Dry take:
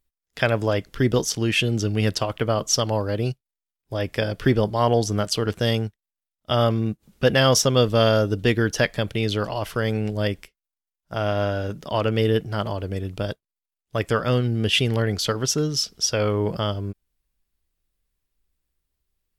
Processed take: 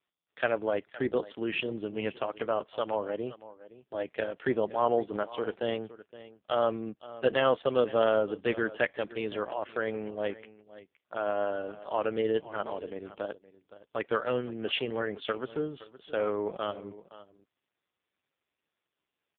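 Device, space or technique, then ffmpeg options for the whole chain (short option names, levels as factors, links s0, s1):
satellite phone: -af "highpass=330,lowpass=3300,aecho=1:1:517:0.141,volume=0.596" -ar 8000 -c:a libopencore_amrnb -b:a 5150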